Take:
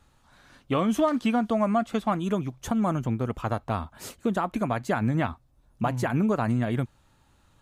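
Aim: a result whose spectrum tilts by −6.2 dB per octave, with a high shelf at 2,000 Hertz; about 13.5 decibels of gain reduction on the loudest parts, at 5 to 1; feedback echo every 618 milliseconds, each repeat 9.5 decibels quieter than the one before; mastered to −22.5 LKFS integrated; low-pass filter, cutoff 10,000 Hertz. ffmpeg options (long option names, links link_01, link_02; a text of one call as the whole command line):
ffmpeg -i in.wav -af "lowpass=10000,highshelf=frequency=2000:gain=-6.5,acompressor=threshold=-36dB:ratio=5,aecho=1:1:618|1236|1854|2472:0.335|0.111|0.0365|0.012,volume=17dB" out.wav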